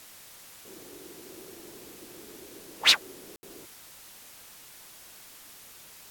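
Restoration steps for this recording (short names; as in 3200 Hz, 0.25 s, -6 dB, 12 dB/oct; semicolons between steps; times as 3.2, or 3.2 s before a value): room tone fill 3.36–3.43; noise print and reduce 30 dB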